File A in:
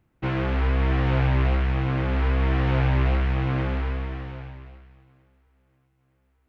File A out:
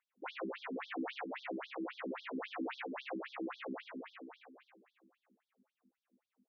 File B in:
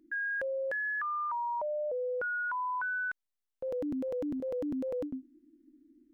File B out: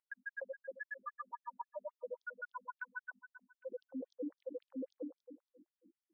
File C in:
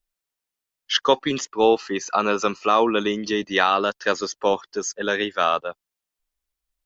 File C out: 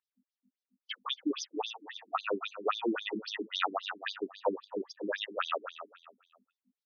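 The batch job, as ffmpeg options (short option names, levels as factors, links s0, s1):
-af "aeval=exprs='val(0)+0.00316*(sin(2*PI*50*n/s)+sin(2*PI*2*50*n/s)/2+sin(2*PI*3*50*n/s)/3+sin(2*PI*4*50*n/s)/4+sin(2*PI*5*50*n/s)/5)':c=same,aecho=1:1:279|558|837:0.237|0.0711|0.0213,afftfilt=real='re*between(b*sr/1024,270*pow(4700/270,0.5+0.5*sin(2*PI*3.7*pts/sr))/1.41,270*pow(4700/270,0.5+0.5*sin(2*PI*3.7*pts/sr))*1.41)':imag='im*between(b*sr/1024,270*pow(4700/270,0.5+0.5*sin(2*PI*3.7*pts/sr))/1.41,270*pow(4700/270,0.5+0.5*sin(2*PI*3.7*pts/sr))*1.41)':win_size=1024:overlap=0.75,volume=0.531"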